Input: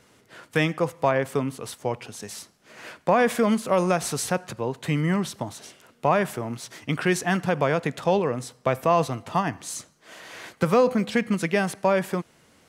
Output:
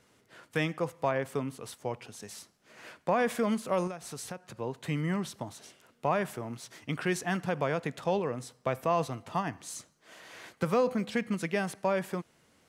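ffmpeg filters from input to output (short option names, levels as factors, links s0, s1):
-filter_complex "[0:a]asettb=1/sr,asplit=3[s0][s1][s2];[s0]atrim=end=3.874[s3];[s1]atrim=start=3.87:end=4.56,asetpts=PTS-STARTPTS,afade=t=in:d=0.004:c=qsin,afade=t=out:st=0.686:d=0.004:c=qsin,acompressor=threshold=0.0316:ratio=5[s4];[s2]atrim=start=4.556[s5];[s3][s4]acrossfade=d=0.004:c1=hsin:c2=qsin[s6];[s6][s5]acrossfade=d=0.004:c1=qsin:c2=hsin,volume=0.422"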